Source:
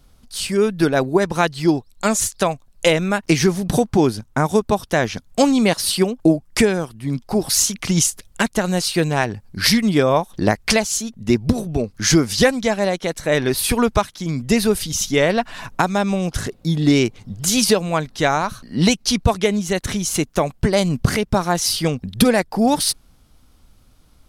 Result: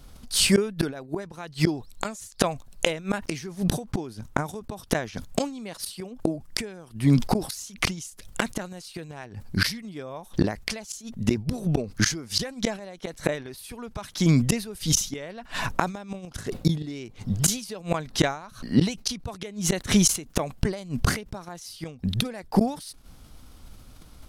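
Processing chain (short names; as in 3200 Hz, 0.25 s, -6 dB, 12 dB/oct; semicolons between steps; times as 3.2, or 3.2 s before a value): flipped gate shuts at -12 dBFS, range -26 dB; sustainer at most 130 dB/s; gain +4.5 dB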